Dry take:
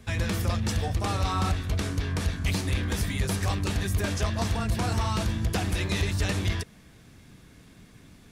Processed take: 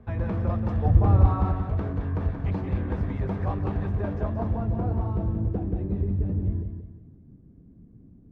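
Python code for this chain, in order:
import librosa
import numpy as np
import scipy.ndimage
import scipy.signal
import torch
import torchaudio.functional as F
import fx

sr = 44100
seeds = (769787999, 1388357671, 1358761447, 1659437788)

y = fx.filter_sweep_lowpass(x, sr, from_hz=920.0, to_hz=290.0, start_s=3.8, end_s=6.38, q=1.0)
y = fx.low_shelf(y, sr, hz=270.0, db=11.5, at=(0.85, 1.27))
y = fx.echo_feedback(y, sr, ms=179, feedback_pct=36, wet_db=-7.5)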